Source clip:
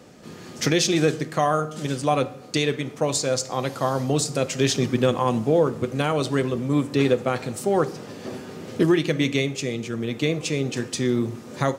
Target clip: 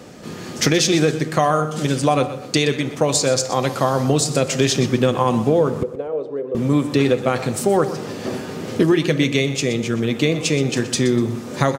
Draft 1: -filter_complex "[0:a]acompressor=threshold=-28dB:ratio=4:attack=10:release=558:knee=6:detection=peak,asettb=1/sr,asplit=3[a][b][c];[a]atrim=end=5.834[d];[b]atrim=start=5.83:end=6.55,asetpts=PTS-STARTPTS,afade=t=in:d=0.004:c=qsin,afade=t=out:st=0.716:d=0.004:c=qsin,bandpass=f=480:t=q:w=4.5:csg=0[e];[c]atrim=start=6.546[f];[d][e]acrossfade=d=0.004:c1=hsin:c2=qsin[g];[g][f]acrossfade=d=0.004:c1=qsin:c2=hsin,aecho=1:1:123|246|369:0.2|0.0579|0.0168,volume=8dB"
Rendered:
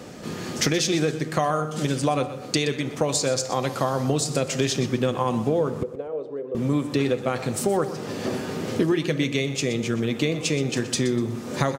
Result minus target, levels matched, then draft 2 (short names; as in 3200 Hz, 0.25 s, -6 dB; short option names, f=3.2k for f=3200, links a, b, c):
compressor: peak gain reduction +6.5 dB
-filter_complex "[0:a]acompressor=threshold=-19.5dB:ratio=4:attack=10:release=558:knee=6:detection=peak,asettb=1/sr,asplit=3[a][b][c];[a]atrim=end=5.834[d];[b]atrim=start=5.83:end=6.55,asetpts=PTS-STARTPTS,afade=t=in:d=0.004:c=qsin,afade=t=out:st=0.716:d=0.004:c=qsin,bandpass=f=480:t=q:w=4.5:csg=0[e];[c]atrim=start=6.546[f];[d][e]acrossfade=d=0.004:c1=hsin:c2=qsin[g];[g][f]acrossfade=d=0.004:c1=qsin:c2=hsin,aecho=1:1:123|246|369:0.2|0.0579|0.0168,volume=8dB"